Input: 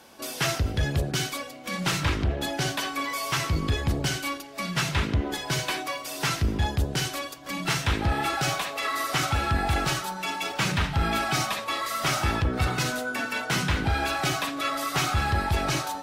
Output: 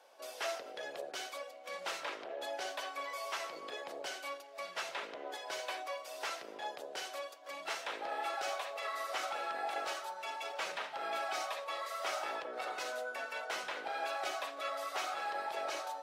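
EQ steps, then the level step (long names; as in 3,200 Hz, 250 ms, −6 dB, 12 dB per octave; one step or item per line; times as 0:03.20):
four-pole ladder high-pass 480 Hz, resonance 50%
high-shelf EQ 8,100 Hz −7.5 dB
−3.0 dB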